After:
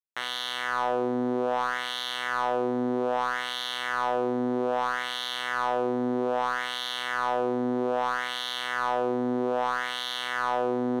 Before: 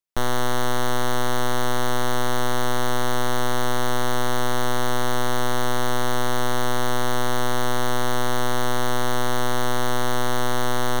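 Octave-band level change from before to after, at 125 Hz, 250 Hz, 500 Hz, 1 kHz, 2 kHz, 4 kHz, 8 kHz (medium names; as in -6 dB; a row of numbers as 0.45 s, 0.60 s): -16.5 dB, -1.5 dB, -2.0 dB, -3.0 dB, -2.5 dB, -2.5 dB, -15.0 dB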